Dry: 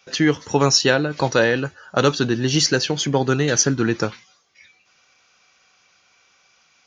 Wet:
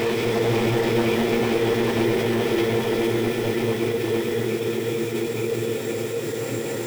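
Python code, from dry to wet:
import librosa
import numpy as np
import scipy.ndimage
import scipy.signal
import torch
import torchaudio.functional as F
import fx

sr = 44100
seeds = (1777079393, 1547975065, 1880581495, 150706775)

p1 = fx.reverse_delay_fb(x, sr, ms=276, feedback_pct=48, wet_db=-7)
p2 = fx.quant_dither(p1, sr, seeds[0], bits=6, dither='triangular')
p3 = p1 + F.gain(torch.from_numpy(p2), -8.0).numpy()
p4 = fx.paulstretch(p3, sr, seeds[1], factor=49.0, window_s=0.25, from_s=4.38)
p5 = np.clip(p4, -10.0 ** (-23.5 / 20.0), 10.0 ** (-23.5 / 20.0))
p6 = fx.formant_shift(p5, sr, semitones=5)
p7 = p6 + fx.echo_alternate(p6, sr, ms=229, hz=940.0, feedback_pct=56, wet_db=-3.0, dry=0)
p8 = fx.attack_slew(p7, sr, db_per_s=130.0)
y = F.gain(torch.from_numpy(p8), 3.5).numpy()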